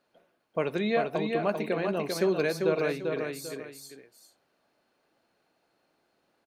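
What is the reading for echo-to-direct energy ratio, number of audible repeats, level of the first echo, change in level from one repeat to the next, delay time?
-4.0 dB, 2, -4.5 dB, -10.0 dB, 0.394 s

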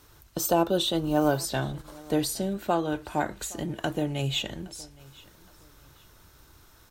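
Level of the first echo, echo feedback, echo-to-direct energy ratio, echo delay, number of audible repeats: -23.0 dB, 31%, -22.5 dB, 0.817 s, 2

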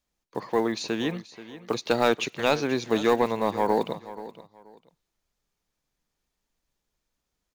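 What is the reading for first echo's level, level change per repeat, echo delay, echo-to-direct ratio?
-15.5 dB, -12.5 dB, 0.481 s, -15.5 dB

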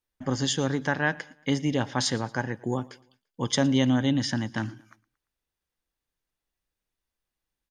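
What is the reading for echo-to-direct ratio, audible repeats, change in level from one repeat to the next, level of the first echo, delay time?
-22.5 dB, 2, -7.0 dB, -23.5 dB, 0.114 s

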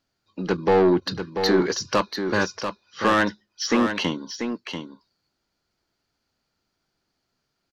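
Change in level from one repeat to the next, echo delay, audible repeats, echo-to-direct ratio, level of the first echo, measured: no steady repeat, 0.689 s, 1, -7.5 dB, -7.5 dB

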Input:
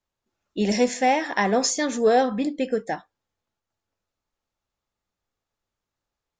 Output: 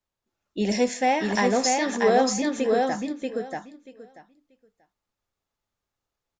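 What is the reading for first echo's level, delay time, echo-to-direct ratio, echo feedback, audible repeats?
-3.0 dB, 0.635 s, -3.0 dB, 16%, 3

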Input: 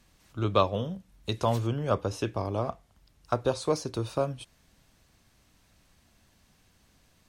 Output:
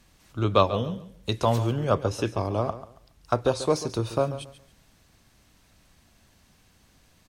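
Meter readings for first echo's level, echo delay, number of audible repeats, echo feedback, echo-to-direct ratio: -13.5 dB, 0.139 s, 2, 24%, -13.5 dB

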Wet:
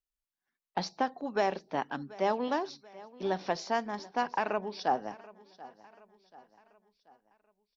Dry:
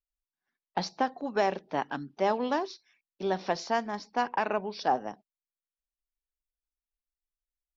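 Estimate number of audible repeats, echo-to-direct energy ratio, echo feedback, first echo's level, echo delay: 3, -19.0 dB, 47%, -20.0 dB, 0.734 s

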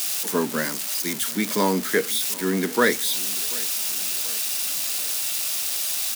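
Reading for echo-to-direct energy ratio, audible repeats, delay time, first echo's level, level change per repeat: -20.0 dB, 3, 0.736 s, -21.5 dB, -5.5 dB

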